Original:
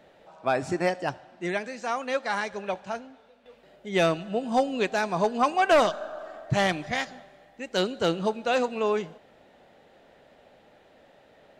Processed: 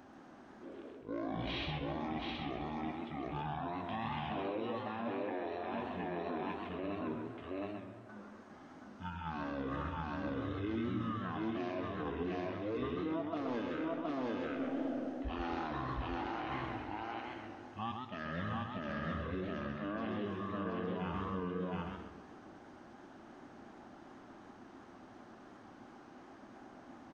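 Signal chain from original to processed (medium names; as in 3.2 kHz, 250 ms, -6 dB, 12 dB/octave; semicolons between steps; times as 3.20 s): delay 309 ms -5 dB; speed mistake 78 rpm record played at 33 rpm; tone controls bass -12 dB, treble +6 dB; reverse; compression 10:1, threshold -36 dBFS, peak gain reduction 19 dB; reverse; peak limiter -34.5 dBFS, peak gain reduction 10 dB; modulated delay 131 ms, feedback 33%, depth 150 cents, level -5 dB; trim +4 dB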